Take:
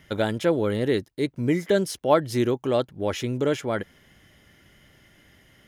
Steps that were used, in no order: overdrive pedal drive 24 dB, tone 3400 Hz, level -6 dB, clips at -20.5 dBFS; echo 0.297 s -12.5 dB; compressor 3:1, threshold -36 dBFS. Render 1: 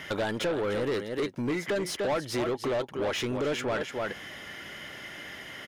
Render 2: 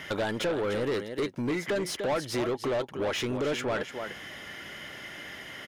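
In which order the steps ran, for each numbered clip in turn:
echo > compressor > overdrive pedal; compressor > echo > overdrive pedal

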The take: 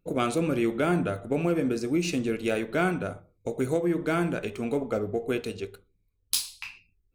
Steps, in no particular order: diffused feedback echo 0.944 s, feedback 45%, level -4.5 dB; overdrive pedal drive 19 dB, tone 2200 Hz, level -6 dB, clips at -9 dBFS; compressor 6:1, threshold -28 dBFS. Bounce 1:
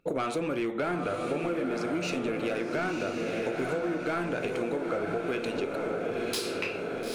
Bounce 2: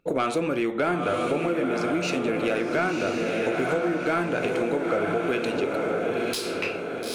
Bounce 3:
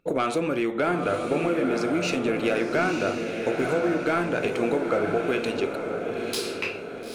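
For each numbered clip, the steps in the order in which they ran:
overdrive pedal > diffused feedback echo > compressor; diffused feedback echo > compressor > overdrive pedal; compressor > overdrive pedal > diffused feedback echo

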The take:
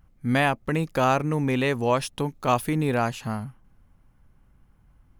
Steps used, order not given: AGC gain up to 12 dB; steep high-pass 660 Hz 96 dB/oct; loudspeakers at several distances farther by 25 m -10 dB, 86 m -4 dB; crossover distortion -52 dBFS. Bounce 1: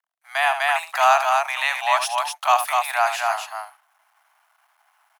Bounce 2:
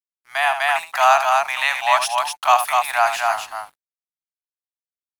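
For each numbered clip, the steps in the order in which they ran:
loudspeakers at several distances > AGC > crossover distortion > steep high-pass; steep high-pass > crossover distortion > loudspeakers at several distances > AGC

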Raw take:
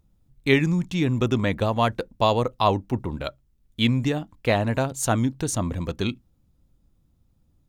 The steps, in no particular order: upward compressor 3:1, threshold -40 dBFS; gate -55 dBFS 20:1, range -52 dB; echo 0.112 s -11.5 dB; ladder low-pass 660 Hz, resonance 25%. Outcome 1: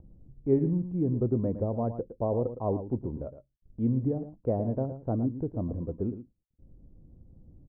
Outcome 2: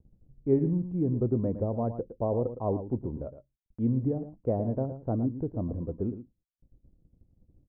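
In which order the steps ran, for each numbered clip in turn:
ladder low-pass > upward compressor > gate > echo; upward compressor > ladder low-pass > gate > echo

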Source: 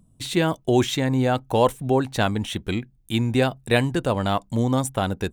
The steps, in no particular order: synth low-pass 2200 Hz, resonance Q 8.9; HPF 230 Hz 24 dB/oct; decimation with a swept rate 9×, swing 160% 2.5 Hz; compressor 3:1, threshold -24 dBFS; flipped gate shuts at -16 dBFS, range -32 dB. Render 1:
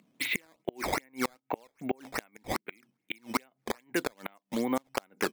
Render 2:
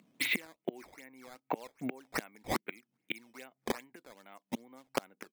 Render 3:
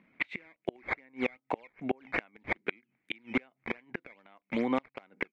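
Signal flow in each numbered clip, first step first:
synth low-pass > compressor > HPF > flipped gate > decimation with a swept rate; synth low-pass > flipped gate > compressor > HPF > decimation with a swept rate; compressor > HPF > decimation with a swept rate > synth low-pass > flipped gate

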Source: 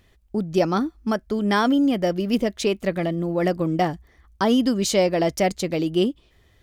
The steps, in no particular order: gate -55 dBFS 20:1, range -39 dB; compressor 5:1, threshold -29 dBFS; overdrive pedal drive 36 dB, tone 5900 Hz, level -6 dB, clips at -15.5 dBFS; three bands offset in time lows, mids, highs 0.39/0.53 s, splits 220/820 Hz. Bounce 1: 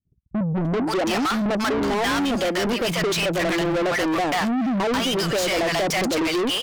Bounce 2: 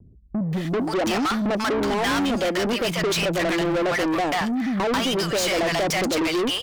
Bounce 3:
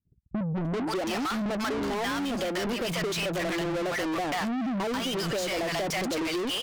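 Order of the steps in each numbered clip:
gate > three bands offset in time > compressor > overdrive pedal; compressor > three bands offset in time > overdrive pedal > gate; gate > three bands offset in time > overdrive pedal > compressor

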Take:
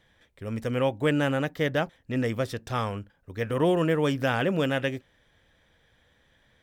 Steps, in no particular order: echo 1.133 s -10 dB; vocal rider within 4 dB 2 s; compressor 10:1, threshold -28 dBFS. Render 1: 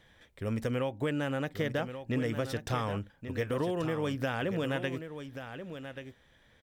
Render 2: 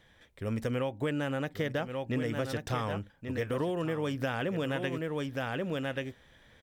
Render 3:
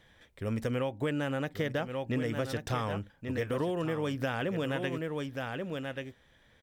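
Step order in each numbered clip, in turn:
vocal rider > compressor > echo; echo > vocal rider > compressor; vocal rider > echo > compressor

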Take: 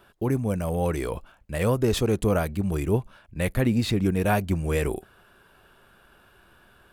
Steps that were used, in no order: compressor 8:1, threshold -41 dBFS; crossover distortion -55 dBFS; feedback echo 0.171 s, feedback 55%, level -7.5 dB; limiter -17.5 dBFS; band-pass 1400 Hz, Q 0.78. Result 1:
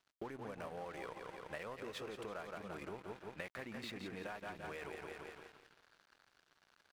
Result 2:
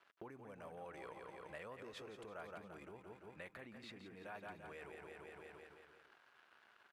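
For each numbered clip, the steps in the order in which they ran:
feedback echo > limiter > band-pass > compressor > crossover distortion; crossover distortion > feedback echo > limiter > compressor > band-pass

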